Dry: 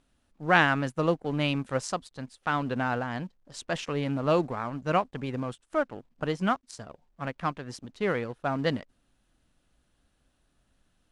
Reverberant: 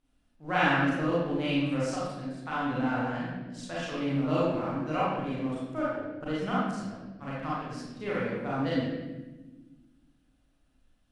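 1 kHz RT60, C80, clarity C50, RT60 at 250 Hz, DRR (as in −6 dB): 0.95 s, 1.0 dB, −3.0 dB, 2.2 s, −9.0 dB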